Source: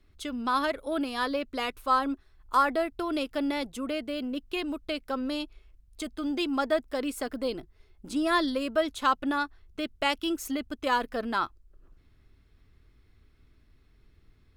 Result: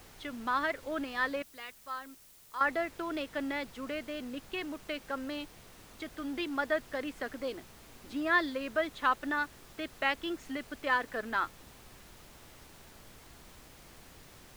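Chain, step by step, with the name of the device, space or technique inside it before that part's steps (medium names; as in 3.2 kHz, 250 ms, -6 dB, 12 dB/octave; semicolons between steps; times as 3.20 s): horn gramophone (band-pass 250–3800 Hz; peaking EQ 1.8 kHz +9.5 dB 0.54 oct; wow and flutter; pink noise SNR 18 dB); 1.42–2.61 s: pre-emphasis filter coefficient 0.8; trim -5.5 dB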